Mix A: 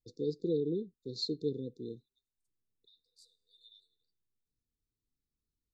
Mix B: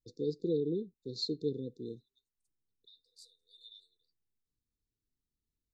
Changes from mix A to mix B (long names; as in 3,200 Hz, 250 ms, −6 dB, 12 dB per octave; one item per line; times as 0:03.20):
second voice +6.0 dB
reverb: off